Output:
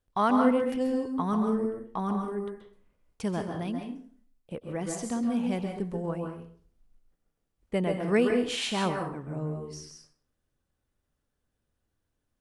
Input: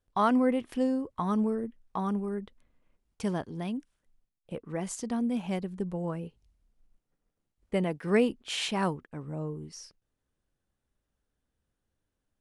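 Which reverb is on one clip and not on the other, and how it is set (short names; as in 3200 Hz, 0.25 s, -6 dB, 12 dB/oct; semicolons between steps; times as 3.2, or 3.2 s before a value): plate-style reverb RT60 0.51 s, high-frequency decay 0.7×, pre-delay 0.12 s, DRR 3 dB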